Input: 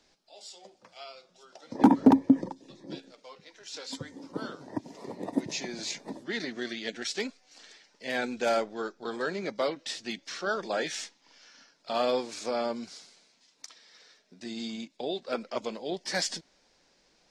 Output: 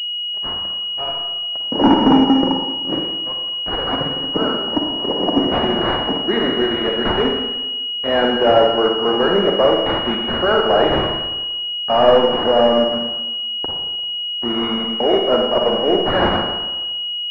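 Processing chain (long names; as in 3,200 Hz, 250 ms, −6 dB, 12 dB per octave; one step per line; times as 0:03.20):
downward expander −47 dBFS
low-shelf EQ 170 Hz −11.5 dB
leveller curve on the samples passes 5
four-comb reverb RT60 1.1 s, DRR 1 dB
switching amplifier with a slow clock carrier 2,900 Hz
level +1 dB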